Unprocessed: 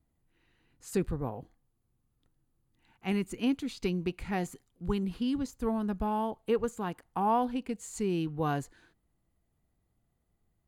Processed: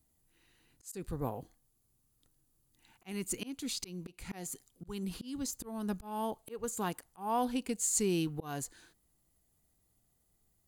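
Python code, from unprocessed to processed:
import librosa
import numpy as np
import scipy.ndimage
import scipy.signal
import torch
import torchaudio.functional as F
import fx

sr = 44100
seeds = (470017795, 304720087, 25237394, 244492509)

y = fx.bass_treble(x, sr, bass_db=-2, treble_db=14)
y = fx.auto_swell(y, sr, attack_ms=319.0)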